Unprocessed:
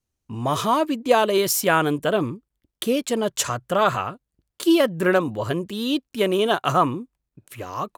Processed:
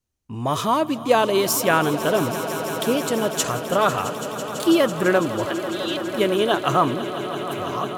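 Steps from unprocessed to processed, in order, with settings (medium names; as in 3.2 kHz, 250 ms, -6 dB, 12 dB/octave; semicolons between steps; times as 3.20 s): 5.45–6.04 s: band-pass 660–5600 Hz; echo with a slow build-up 166 ms, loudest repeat 5, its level -15 dB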